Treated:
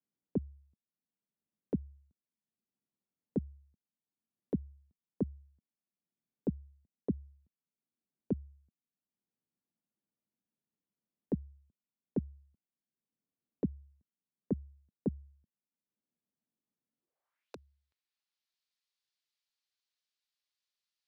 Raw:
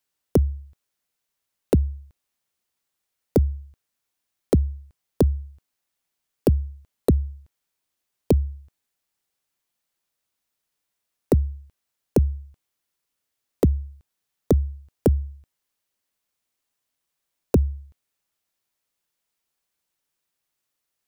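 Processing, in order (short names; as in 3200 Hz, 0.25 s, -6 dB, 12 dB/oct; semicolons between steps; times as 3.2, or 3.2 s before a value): band-pass sweep 210 Hz -> 4300 Hz, 16.97–17.55; three-band squash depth 40%; gain -7 dB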